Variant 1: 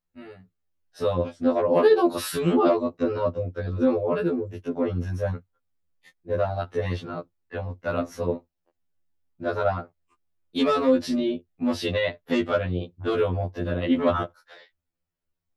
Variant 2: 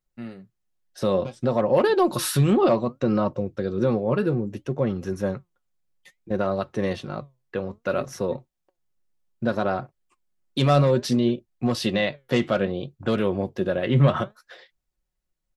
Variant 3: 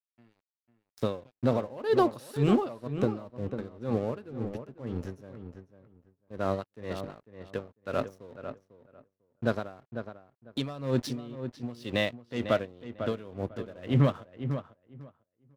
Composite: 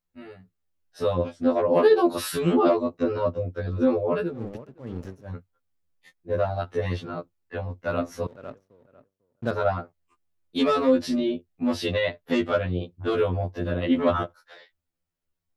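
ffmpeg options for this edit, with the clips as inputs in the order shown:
-filter_complex "[2:a]asplit=2[s0][s1];[0:a]asplit=3[s2][s3][s4];[s2]atrim=end=4.36[s5];[s0]atrim=start=4.2:end=5.4[s6];[s3]atrim=start=5.24:end=8.272[s7];[s1]atrim=start=8.268:end=9.512[s8];[s4]atrim=start=9.508[s9];[s5][s6]acrossfade=d=0.16:c1=tri:c2=tri[s10];[s10][s7]acrossfade=d=0.16:c1=tri:c2=tri[s11];[s11][s8]acrossfade=d=0.004:c1=hsin:c2=hsin[s12];[s12][s9]acrossfade=d=0.004:c1=hsin:c2=hsin"

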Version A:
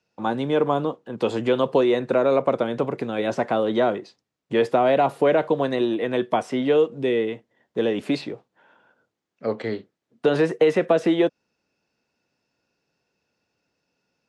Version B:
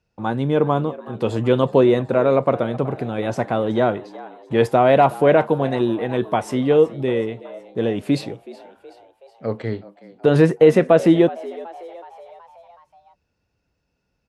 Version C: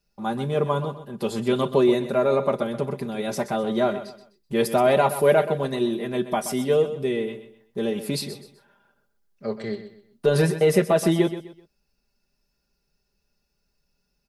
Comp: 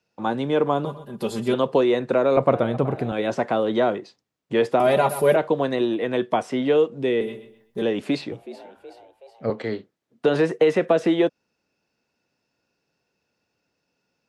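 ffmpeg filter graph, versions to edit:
-filter_complex "[2:a]asplit=3[s0][s1][s2];[1:a]asplit=2[s3][s4];[0:a]asplit=6[s5][s6][s7][s8][s9][s10];[s5]atrim=end=0.852[s11];[s0]atrim=start=0.848:end=1.542[s12];[s6]atrim=start=1.538:end=2.372[s13];[s3]atrim=start=2.368:end=3.122[s14];[s7]atrim=start=3.118:end=4.802[s15];[s1]atrim=start=4.798:end=5.362[s16];[s8]atrim=start=5.358:end=7.212[s17];[s2]atrim=start=7.208:end=7.822[s18];[s9]atrim=start=7.818:end=8.322[s19];[s4]atrim=start=8.318:end=9.502[s20];[s10]atrim=start=9.498[s21];[s11][s12]acrossfade=d=0.004:c1=hsin:c2=hsin[s22];[s22][s13]acrossfade=d=0.004:c1=hsin:c2=hsin[s23];[s23][s14]acrossfade=d=0.004:c1=hsin:c2=hsin[s24];[s24][s15]acrossfade=d=0.004:c1=hsin:c2=hsin[s25];[s25][s16]acrossfade=d=0.004:c1=hsin:c2=hsin[s26];[s26][s17]acrossfade=d=0.004:c1=hsin:c2=hsin[s27];[s27][s18]acrossfade=d=0.004:c1=hsin:c2=hsin[s28];[s28][s19]acrossfade=d=0.004:c1=hsin:c2=hsin[s29];[s29][s20]acrossfade=d=0.004:c1=hsin:c2=hsin[s30];[s30][s21]acrossfade=d=0.004:c1=hsin:c2=hsin"

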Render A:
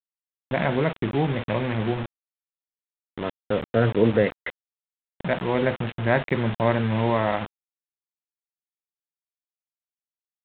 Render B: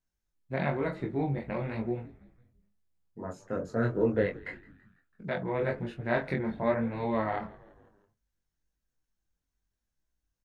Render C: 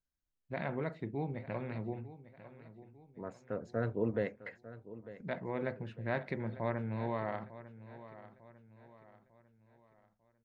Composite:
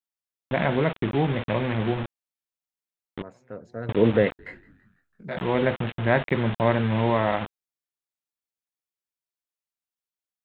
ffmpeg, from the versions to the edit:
-filter_complex "[0:a]asplit=3[s0][s1][s2];[s0]atrim=end=3.222[s3];[2:a]atrim=start=3.218:end=3.892[s4];[s1]atrim=start=3.888:end=4.392[s5];[1:a]atrim=start=4.388:end=5.372[s6];[s2]atrim=start=5.368[s7];[s3][s4]acrossfade=d=0.004:c1=hsin:c2=hsin[s8];[s8][s5]acrossfade=d=0.004:c1=hsin:c2=hsin[s9];[s9][s6]acrossfade=d=0.004:c1=hsin:c2=hsin[s10];[s10][s7]acrossfade=d=0.004:c1=hsin:c2=hsin"

